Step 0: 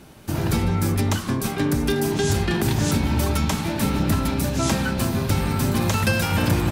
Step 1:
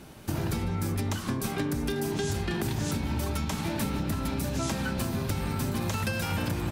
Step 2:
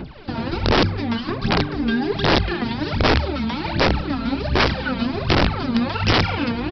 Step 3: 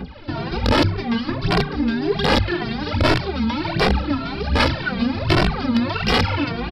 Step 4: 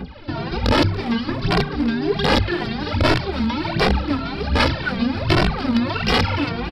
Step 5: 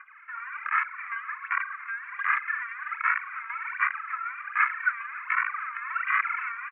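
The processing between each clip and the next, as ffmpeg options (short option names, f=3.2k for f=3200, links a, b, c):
-af "acompressor=threshold=-25dB:ratio=6,volume=-1.5dB"
-af "aphaser=in_gain=1:out_gain=1:delay=4.4:decay=0.8:speed=1.3:type=sinusoidal,aresample=11025,aeval=exprs='(mod(5.31*val(0)+1,2)-1)/5.31':c=same,aresample=44100,volume=4dB"
-filter_complex "[0:a]acontrast=49,asplit=2[a][b];[b]adelay=2.1,afreqshift=1.8[c];[a][c]amix=inputs=2:normalize=1,volume=-2dB"
-af "aecho=1:1:284|568|852|1136:0.112|0.0539|0.0259|0.0124"
-af "asuperpass=centerf=1600:order=12:qfactor=1.3"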